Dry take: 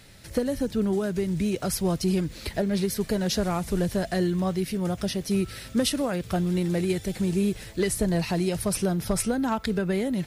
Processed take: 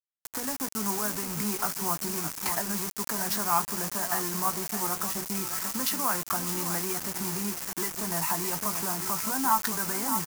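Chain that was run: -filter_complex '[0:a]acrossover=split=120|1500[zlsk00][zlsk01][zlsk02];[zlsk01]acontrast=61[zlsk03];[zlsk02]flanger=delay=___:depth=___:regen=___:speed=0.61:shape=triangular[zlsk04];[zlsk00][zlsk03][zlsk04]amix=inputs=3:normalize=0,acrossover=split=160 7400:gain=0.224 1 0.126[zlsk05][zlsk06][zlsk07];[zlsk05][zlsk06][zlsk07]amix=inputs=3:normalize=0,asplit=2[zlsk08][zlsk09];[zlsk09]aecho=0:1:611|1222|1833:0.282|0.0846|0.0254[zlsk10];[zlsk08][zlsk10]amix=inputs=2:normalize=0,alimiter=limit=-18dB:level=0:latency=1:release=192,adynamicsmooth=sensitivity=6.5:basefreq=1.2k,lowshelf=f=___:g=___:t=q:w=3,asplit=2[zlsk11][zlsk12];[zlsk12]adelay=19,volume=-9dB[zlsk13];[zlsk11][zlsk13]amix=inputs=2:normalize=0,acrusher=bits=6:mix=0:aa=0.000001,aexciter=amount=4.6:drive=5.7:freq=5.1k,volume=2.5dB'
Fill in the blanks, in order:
6.8, 5.6, 31, 720, -10.5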